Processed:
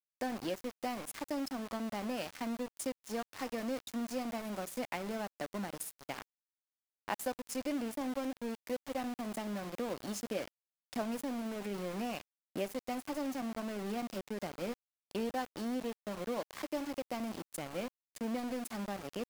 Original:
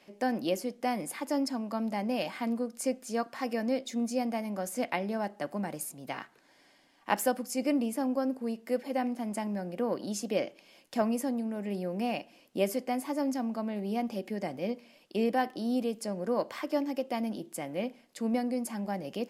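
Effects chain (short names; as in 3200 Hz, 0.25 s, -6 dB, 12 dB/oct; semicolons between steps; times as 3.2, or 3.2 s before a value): compressor 2:1, threshold -36 dBFS, peak gain reduction 8.5 dB; sample gate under -38.5 dBFS; stuck buffer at 15.94, samples 512, times 10; gain -1.5 dB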